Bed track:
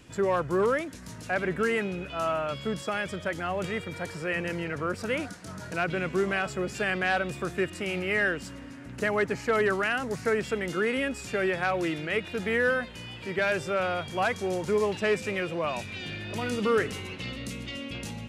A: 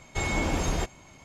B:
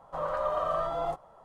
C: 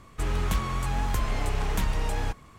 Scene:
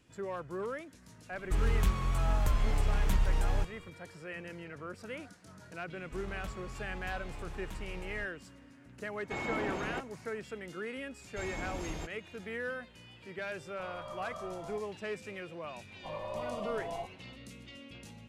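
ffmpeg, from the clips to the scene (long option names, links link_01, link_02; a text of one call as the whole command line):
ffmpeg -i bed.wav -i cue0.wav -i cue1.wav -i cue2.wav -filter_complex "[3:a]asplit=2[link_01][link_02];[1:a]asplit=2[link_03][link_04];[2:a]asplit=2[link_05][link_06];[0:a]volume=-13dB[link_07];[link_01]lowshelf=frequency=110:gain=7[link_08];[link_02]highshelf=frequency=9200:gain=-8[link_09];[link_03]acrossover=split=150 3300:gain=0.158 1 0.158[link_10][link_11][link_12];[link_10][link_11][link_12]amix=inputs=3:normalize=0[link_13];[link_06]asuperstop=centerf=1500:order=12:qfactor=1.7[link_14];[link_08]atrim=end=2.58,asetpts=PTS-STARTPTS,volume=-6.5dB,afade=type=in:duration=0.004:curve=hsin,afade=type=out:start_time=2.576:duration=0.004:curve=hsin,adelay=1320[link_15];[link_09]atrim=end=2.58,asetpts=PTS-STARTPTS,volume=-16.5dB,afade=type=in:duration=0.004:curve=hsin,afade=type=out:start_time=2.576:duration=0.004:curve=hsin,adelay=261513S[link_16];[link_13]atrim=end=1.24,asetpts=PTS-STARTPTS,volume=-6dB,afade=type=in:duration=0.004:curve=hsin,afade=type=out:start_time=1.236:duration=0.004:curve=hsin,adelay=9150[link_17];[link_04]atrim=end=1.24,asetpts=PTS-STARTPTS,volume=-13dB,afade=type=in:duration=0.004:curve=hsin,afade=type=out:start_time=1.236:duration=0.004:curve=hsin,adelay=11210[link_18];[link_05]atrim=end=1.44,asetpts=PTS-STARTPTS,volume=-15dB,afade=type=in:duration=0.004:curve=hsin,afade=type=out:start_time=1.436:duration=0.004:curve=hsin,adelay=13650[link_19];[link_14]atrim=end=1.44,asetpts=PTS-STARTPTS,volume=-8dB,afade=type=in:duration=0.004:curve=hsin,afade=type=out:start_time=1.436:duration=0.004:curve=hsin,adelay=15910[link_20];[link_07][link_15][link_16][link_17][link_18][link_19][link_20]amix=inputs=7:normalize=0" out.wav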